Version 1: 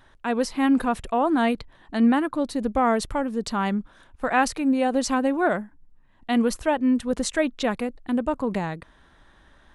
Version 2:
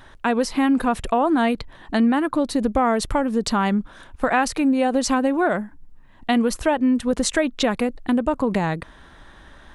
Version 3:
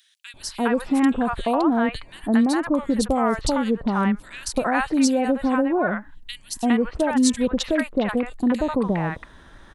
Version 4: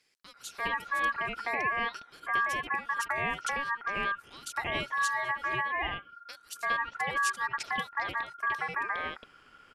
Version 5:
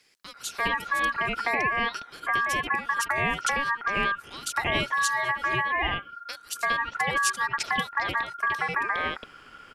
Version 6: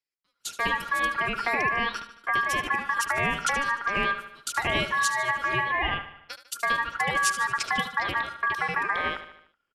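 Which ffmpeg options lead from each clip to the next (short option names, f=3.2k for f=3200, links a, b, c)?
-af "acompressor=threshold=-27dB:ratio=3,volume=9dB"
-filter_complex "[0:a]acrossover=split=830|2700[a][b][c];[a]adelay=340[d];[b]adelay=410[e];[d][e][c]amix=inputs=3:normalize=0"
-af "aeval=exprs='val(0)*sin(2*PI*1400*n/s)':c=same,volume=-8dB"
-filter_complex "[0:a]acrossover=split=350|3000[a][b][c];[b]acompressor=threshold=-32dB:ratio=6[d];[a][d][c]amix=inputs=3:normalize=0,volume=8.5dB"
-af "agate=range=-31dB:threshold=-36dB:ratio=16:detection=peak,aecho=1:1:75|150|225|300|375:0.237|0.126|0.0666|0.0353|0.0187"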